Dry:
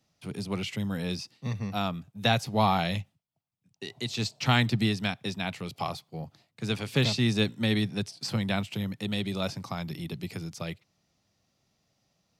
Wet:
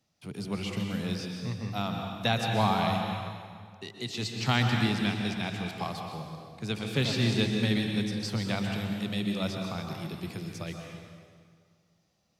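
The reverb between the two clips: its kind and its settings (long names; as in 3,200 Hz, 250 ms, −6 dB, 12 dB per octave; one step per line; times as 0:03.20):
dense smooth reverb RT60 2 s, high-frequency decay 0.8×, pre-delay 110 ms, DRR 2 dB
level −3 dB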